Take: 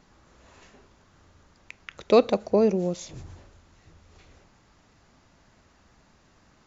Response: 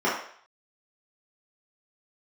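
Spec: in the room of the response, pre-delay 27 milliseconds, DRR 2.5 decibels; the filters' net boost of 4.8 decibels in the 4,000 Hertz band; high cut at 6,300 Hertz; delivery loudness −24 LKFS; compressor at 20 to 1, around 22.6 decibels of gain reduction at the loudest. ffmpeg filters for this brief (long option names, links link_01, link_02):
-filter_complex "[0:a]lowpass=6300,equalizer=frequency=4000:width_type=o:gain=6,acompressor=threshold=-35dB:ratio=20,asplit=2[link_01][link_02];[1:a]atrim=start_sample=2205,adelay=27[link_03];[link_02][link_03]afir=irnorm=-1:irlink=0,volume=-18.5dB[link_04];[link_01][link_04]amix=inputs=2:normalize=0,volume=18dB"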